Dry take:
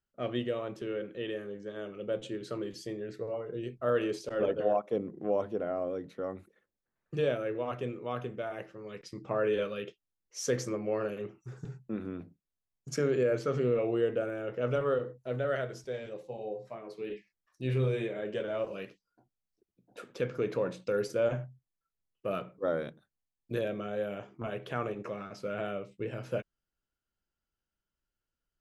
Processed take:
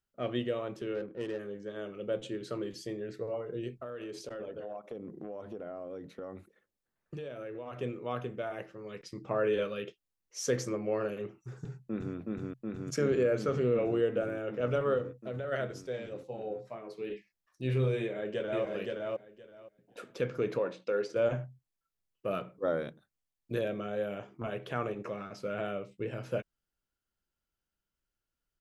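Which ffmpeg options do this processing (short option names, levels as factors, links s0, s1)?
-filter_complex "[0:a]asplit=3[s0][s1][s2];[s0]afade=t=out:st=0.94:d=0.02[s3];[s1]adynamicsmooth=sensitivity=7:basefreq=600,afade=t=in:st=0.94:d=0.02,afade=t=out:st=1.38:d=0.02[s4];[s2]afade=t=in:st=1.38:d=0.02[s5];[s3][s4][s5]amix=inputs=3:normalize=0,asettb=1/sr,asplit=3[s6][s7][s8];[s6]atrim=end=3.734[s9];[s7]atrim=start=3.73:end=7.79,asetpts=PTS-STARTPTS,afade=t=in:d=0.004:c=qsin,afade=t=out:st=4.056:d=0.004:c=qsin,acompressor=threshold=0.0141:ratio=12:attack=3.2:release=140:knee=1:detection=peak[s10];[s8]atrim=start=7.786[s11];[s9][s10]acrossfade=d=0.004:c1=hsin:c2=qsin[s12];[s12][s11]acrossfade=d=0.004:c1=qsin:c2=hsin,asplit=2[s13][s14];[s14]afade=t=in:st=11.63:d=0.01,afade=t=out:st=12.16:d=0.01,aecho=0:1:370|740|1110|1480|1850|2220|2590|2960|3330|3700|4070|4440:0.891251|0.757563|0.643929|0.547339|0.465239|0.395453|0.336135|0.285715|0.242857|0.206429|0.175464|0.149145[s15];[s13][s15]amix=inputs=2:normalize=0,asplit=3[s16][s17][s18];[s16]afade=t=out:st=15.01:d=0.02[s19];[s17]acompressor=threshold=0.0224:ratio=6:attack=3.2:release=140:knee=1:detection=peak,afade=t=in:st=15.01:d=0.02,afade=t=out:st=15.51:d=0.02[s20];[s18]afade=t=in:st=15.51:d=0.02[s21];[s19][s20][s21]amix=inputs=3:normalize=0,asplit=2[s22][s23];[s23]afade=t=in:st=18:d=0.01,afade=t=out:st=18.64:d=0.01,aecho=0:1:520|1040|1560:0.749894|0.112484|0.0168726[s24];[s22][s24]amix=inputs=2:normalize=0,asplit=3[s25][s26][s27];[s25]afade=t=out:st=20.58:d=0.02[s28];[s26]highpass=280,lowpass=4800,afade=t=in:st=20.58:d=0.02,afade=t=out:st=21.15:d=0.02[s29];[s27]afade=t=in:st=21.15:d=0.02[s30];[s28][s29][s30]amix=inputs=3:normalize=0"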